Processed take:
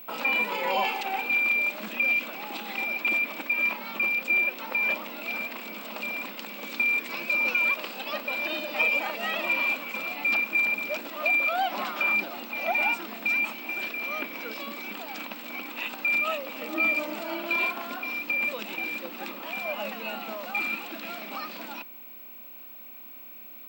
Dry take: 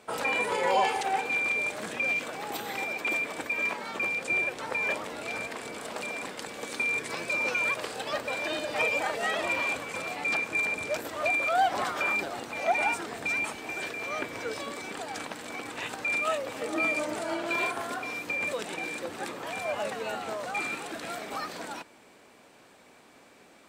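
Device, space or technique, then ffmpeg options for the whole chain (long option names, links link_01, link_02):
old television with a line whistle: -af "highpass=frequency=210:width=0.5412,highpass=frequency=210:width=1.3066,equalizer=frequency=210:width_type=q:width=4:gain=8,equalizer=frequency=440:width_type=q:width=4:gain=-9,equalizer=frequency=730:width_type=q:width=4:gain=-3,equalizer=frequency=1700:width_type=q:width=4:gain=-6,equalizer=frequency=2600:width_type=q:width=4:gain=8,equalizer=frequency=6300:width_type=q:width=4:gain=-7,lowpass=frequency=6700:width=0.5412,lowpass=frequency=6700:width=1.3066,aeval=exprs='val(0)+0.00794*sin(2*PI*15734*n/s)':channel_layout=same"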